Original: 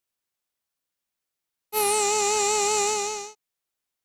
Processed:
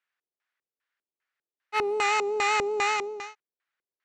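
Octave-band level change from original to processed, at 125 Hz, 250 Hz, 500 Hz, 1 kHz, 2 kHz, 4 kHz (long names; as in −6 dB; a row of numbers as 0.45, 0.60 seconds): can't be measured, −2.0 dB, −2.0 dB, −1.0 dB, +4.0 dB, −5.5 dB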